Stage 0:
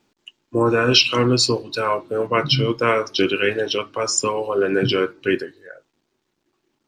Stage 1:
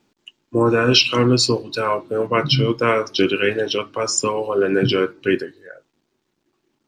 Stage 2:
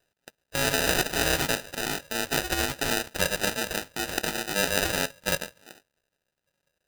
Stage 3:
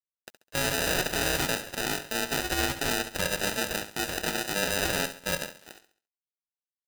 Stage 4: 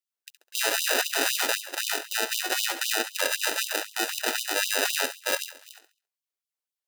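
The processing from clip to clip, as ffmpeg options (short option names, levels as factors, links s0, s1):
-af "equalizer=f=190:w=0.7:g=3"
-af "aeval=exprs='val(0)*sin(2*PI*2000*n/s)':c=same,acrusher=samples=40:mix=1:aa=0.000001,tiltshelf=f=830:g=-8,volume=0.562"
-af "alimiter=limit=0.316:level=0:latency=1:release=23,acrusher=bits=7:mix=0:aa=0.000001,aecho=1:1:68|136|204|272:0.251|0.0929|0.0344|0.0127"
-af "afftfilt=real='re*gte(b*sr/1024,240*pow(2900/240,0.5+0.5*sin(2*PI*3.9*pts/sr)))':imag='im*gte(b*sr/1024,240*pow(2900/240,0.5+0.5*sin(2*PI*3.9*pts/sr)))':win_size=1024:overlap=0.75,volume=1.5"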